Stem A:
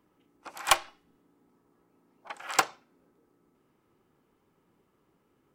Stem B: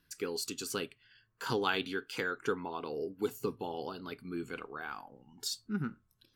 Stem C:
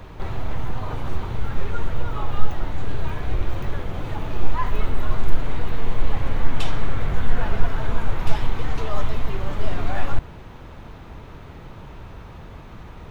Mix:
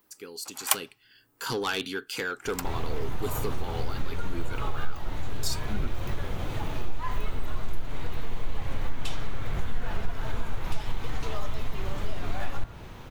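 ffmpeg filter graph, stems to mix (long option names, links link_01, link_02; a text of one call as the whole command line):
ffmpeg -i stem1.wav -i stem2.wav -i stem3.wav -filter_complex "[0:a]aemphasis=mode=production:type=bsi,volume=0.5dB[link_01];[1:a]dynaudnorm=framelen=380:gausssize=5:maxgain=11dB,asoftclip=type=tanh:threshold=-15dB,volume=-7dB,asplit=2[link_02][link_03];[2:a]bandreject=frequency=56.14:width_type=h:width=4,bandreject=frequency=112.28:width_type=h:width=4,bandreject=frequency=168.42:width_type=h:width=4,bandreject=frequency=224.56:width_type=h:width=4,bandreject=frequency=280.7:width_type=h:width=4,bandreject=frequency=336.84:width_type=h:width=4,bandreject=frequency=392.98:width_type=h:width=4,bandreject=frequency=449.12:width_type=h:width=4,bandreject=frequency=505.26:width_type=h:width=4,bandreject=frequency=561.4:width_type=h:width=4,bandreject=frequency=617.54:width_type=h:width=4,bandreject=frequency=673.68:width_type=h:width=4,bandreject=frequency=729.82:width_type=h:width=4,bandreject=frequency=785.96:width_type=h:width=4,bandreject=frequency=842.1:width_type=h:width=4,bandreject=frequency=898.24:width_type=h:width=4,bandreject=frequency=954.38:width_type=h:width=4,bandreject=frequency=1010.52:width_type=h:width=4,bandreject=frequency=1066.66:width_type=h:width=4,bandreject=frequency=1122.8:width_type=h:width=4,bandreject=frequency=1178.94:width_type=h:width=4,bandreject=frequency=1235.08:width_type=h:width=4,bandreject=frequency=1291.22:width_type=h:width=4,bandreject=frequency=1347.36:width_type=h:width=4,bandreject=frequency=1403.5:width_type=h:width=4,bandreject=frequency=1459.64:width_type=h:width=4,bandreject=frequency=1515.78:width_type=h:width=4,bandreject=frequency=1571.92:width_type=h:width=4,bandreject=frequency=1628.06:width_type=h:width=4,bandreject=frequency=1684.2:width_type=h:width=4,bandreject=frequency=1740.34:width_type=h:width=4,bandreject=frequency=1796.48:width_type=h:width=4,bandreject=frequency=1852.62:width_type=h:width=4,bandreject=frequency=1908.76:width_type=h:width=4,bandreject=frequency=1964.9:width_type=h:width=4,adelay=2450,volume=-2.5dB[link_04];[link_03]apad=whole_len=244484[link_05];[link_01][link_05]sidechaincompress=threshold=-46dB:ratio=8:attack=16:release=671[link_06];[link_02][link_04]amix=inputs=2:normalize=0,highshelf=frequency=4000:gain=9,acompressor=threshold=-22dB:ratio=2.5,volume=0dB[link_07];[link_06][link_07]amix=inputs=2:normalize=0" out.wav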